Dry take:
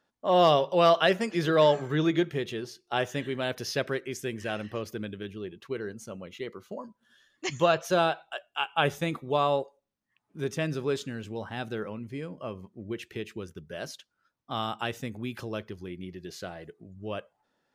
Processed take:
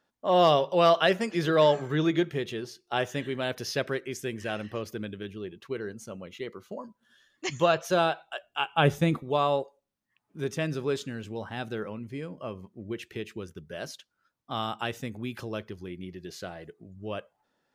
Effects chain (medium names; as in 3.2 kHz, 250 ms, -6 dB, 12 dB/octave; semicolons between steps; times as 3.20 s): 8.43–9.23 s: bass shelf 360 Hz +9.5 dB